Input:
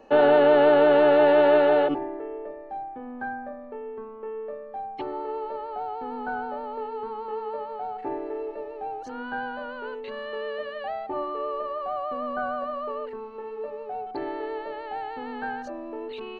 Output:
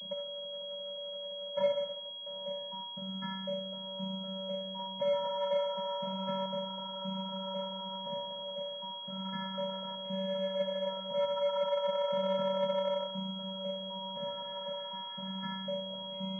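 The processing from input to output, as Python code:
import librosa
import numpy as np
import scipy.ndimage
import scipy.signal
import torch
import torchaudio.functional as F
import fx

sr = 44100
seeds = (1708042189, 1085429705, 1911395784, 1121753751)

y = fx.differentiator(x, sr, at=(1.55, 2.26))
y = y + 10.0 ** (-13.0 / 20.0) * np.pad(y, (int(120 * sr / 1000.0), 0))[:len(y)]
y = fx.room_shoebox(y, sr, seeds[0], volume_m3=3200.0, walls='furnished', distance_m=2.1)
y = fx.over_compress(y, sr, threshold_db=-24.0, ratio=-0.5)
y = fx.vocoder(y, sr, bands=16, carrier='square', carrier_hz=191.0)
y = fx.peak_eq(y, sr, hz=570.0, db=10.5, octaves=0.99, at=(4.79, 6.46))
y = fx.pwm(y, sr, carrier_hz=3300.0)
y = y * 10.0 ** (-8.5 / 20.0)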